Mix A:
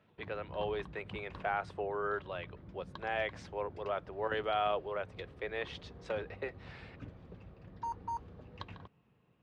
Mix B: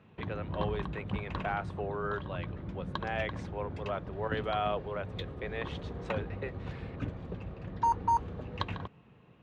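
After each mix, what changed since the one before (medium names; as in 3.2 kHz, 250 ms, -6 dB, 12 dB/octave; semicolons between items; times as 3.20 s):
background +11.5 dB; master: add peaking EQ 5 kHz -5.5 dB 0.35 oct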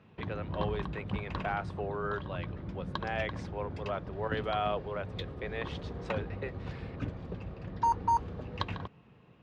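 master: add peaking EQ 5 kHz +5.5 dB 0.35 oct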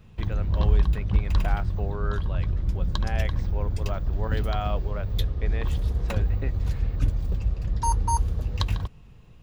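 speech: remove steep high-pass 340 Hz; background: remove band-pass 190–2500 Hz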